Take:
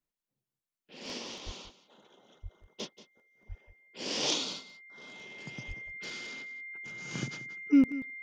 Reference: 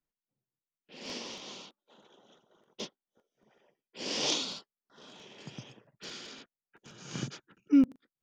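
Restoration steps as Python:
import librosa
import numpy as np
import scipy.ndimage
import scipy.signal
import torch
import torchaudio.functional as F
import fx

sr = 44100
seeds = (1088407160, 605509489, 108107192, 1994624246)

y = fx.notch(x, sr, hz=2100.0, q=30.0)
y = fx.fix_deplosive(y, sr, at_s=(1.45, 2.42, 3.48, 5.67))
y = fx.fix_echo_inverse(y, sr, delay_ms=182, level_db=-15.5)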